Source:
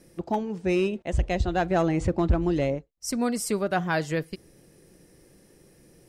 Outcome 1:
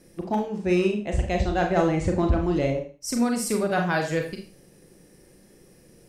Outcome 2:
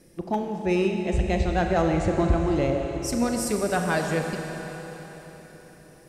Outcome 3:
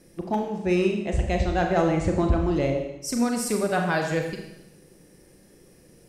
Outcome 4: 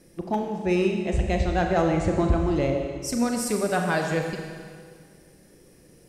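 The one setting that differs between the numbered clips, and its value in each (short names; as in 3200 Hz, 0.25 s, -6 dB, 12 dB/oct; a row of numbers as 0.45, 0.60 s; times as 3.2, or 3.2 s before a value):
Schroeder reverb, RT60: 0.38, 4.2, 0.92, 1.9 s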